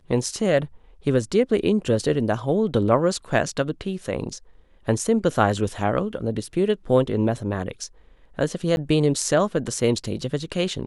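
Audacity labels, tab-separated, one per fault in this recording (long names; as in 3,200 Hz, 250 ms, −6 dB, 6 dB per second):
8.760000	8.770000	drop-out 11 ms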